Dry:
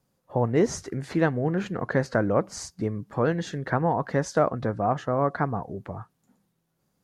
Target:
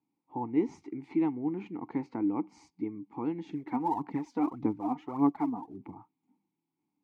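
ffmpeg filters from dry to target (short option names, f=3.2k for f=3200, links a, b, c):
-filter_complex "[0:a]asplit=3[a][b][c];[a]bandpass=f=300:t=q:w=8,volume=0dB[d];[b]bandpass=f=870:t=q:w=8,volume=-6dB[e];[c]bandpass=f=2.24k:t=q:w=8,volume=-9dB[f];[d][e][f]amix=inputs=3:normalize=0,asettb=1/sr,asplit=3[g][h][i];[g]atrim=end=3.494[j];[h]atrim=start=3.49:end=5.94,asetpts=PTS-STARTPTS,afade=t=in:d=0.004:c=qsin,afade=t=out:st=2.446:d=0.004:c=qsin,aphaser=in_gain=1:out_gain=1:delay=4.2:decay=0.62:speed=1.7:type=sinusoidal[k];[i]atrim=start=5.936[l];[j][k]acrossfade=d=0.004:c1=hsin:c2=qsin[m];[m][l]acrossfade=d=0.004:c1=qsin:c2=hsin,volume=3.5dB"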